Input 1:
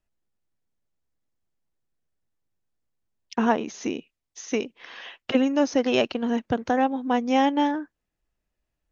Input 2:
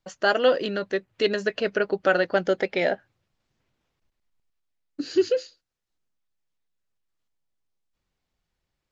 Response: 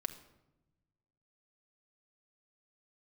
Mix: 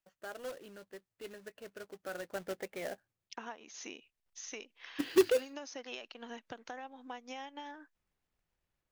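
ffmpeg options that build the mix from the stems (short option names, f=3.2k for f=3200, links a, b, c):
-filter_complex "[0:a]highpass=f=1.5k:p=1,tremolo=f=7.4:d=0.37,acompressor=threshold=-38dB:ratio=10,volume=-3dB[a];[1:a]lowpass=2.7k,acrusher=bits=2:mode=log:mix=0:aa=0.000001,volume=-5.5dB,afade=t=in:st=1.94:d=0.56:silence=0.446684,afade=t=in:st=4:d=0.56:silence=0.266073[b];[a][b]amix=inputs=2:normalize=0"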